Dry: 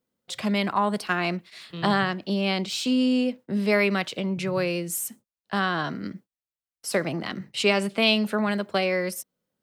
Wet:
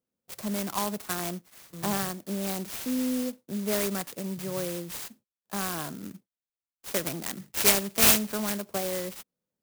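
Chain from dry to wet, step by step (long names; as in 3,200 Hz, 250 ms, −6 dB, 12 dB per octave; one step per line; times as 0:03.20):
0:06.94–0:08.59: parametric band 2,500 Hz +14 dB 0.6 octaves
converter with an unsteady clock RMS 0.12 ms
level −6.5 dB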